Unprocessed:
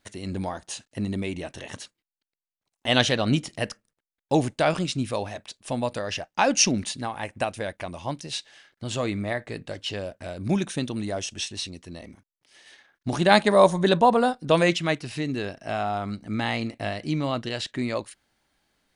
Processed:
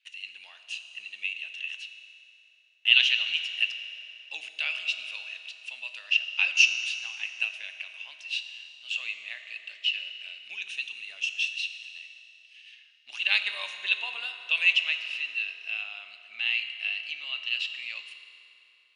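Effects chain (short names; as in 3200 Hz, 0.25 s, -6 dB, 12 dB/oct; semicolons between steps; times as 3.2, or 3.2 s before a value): ladder band-pass 2800 Hz, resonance 85%; reverb RT60 3.3 s, pre-delay 4 ms, DRR 6 dB; gain +6 dB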